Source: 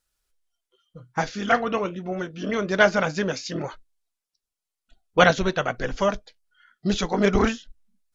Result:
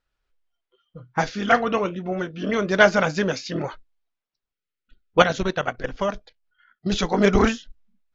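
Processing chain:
0:05.22–0:06.92: output level in coarse steps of 12 dB
low-pass that shuts in the quiet parts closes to 2,800 Hz, open at −16.5 dBFS
0:04.52–0:05.13: gain on a spectral selection 570–1,200 Hz −26 dB
level +2.5 dB

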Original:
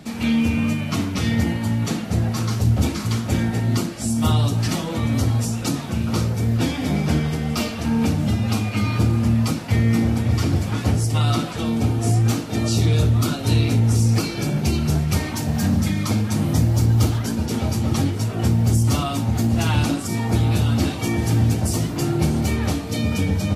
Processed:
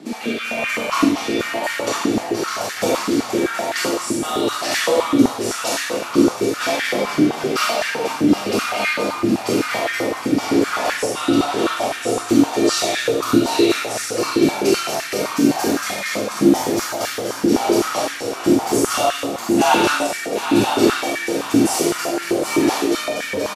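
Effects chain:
rotating-speaker cabinet horn 1 Hz
single-tap delay 768 ms −10 dB
convolution reverb RT60 0.90 s, pre-delay 18 ms, DRR −4 dB
high-pass on a step sequencer 7.8 Hz 310–1,700 Hz
level +2 dB

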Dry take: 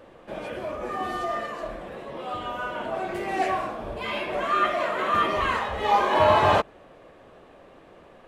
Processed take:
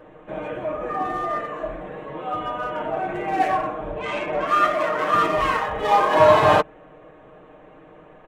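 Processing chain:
adaptive Wiener filter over 9 samples
0:03.92–0:04.47: Bessel low-pass filter 5,800 Hz, order 8
comb filter 6.5 ms
level +2.5 dB

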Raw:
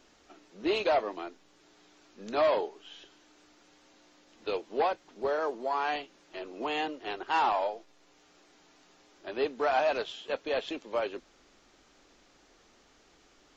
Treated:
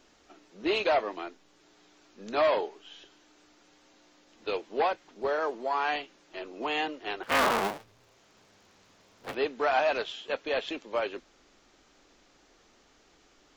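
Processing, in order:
0:07.23–0:09.35: sub-harmonics by changed cycles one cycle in 3, inverted
dynamic equaliser 2,100 Hz, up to +4 dB, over −46 dBFS, Q 0.74

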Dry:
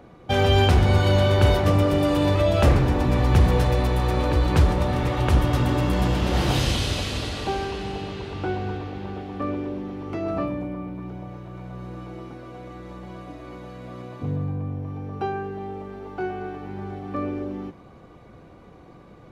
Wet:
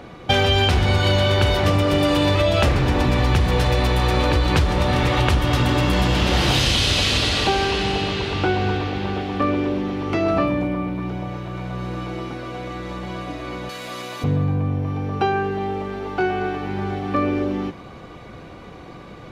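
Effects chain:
parametric band 3,400 Hz +7.5 dB 2.5 octaves
downward compressor 6 to 1, threshold −22 dBFS, peak gain reduction 10 dB
0:13.69–0:14.24: RIAA equalisation recording
level +7.5 dB

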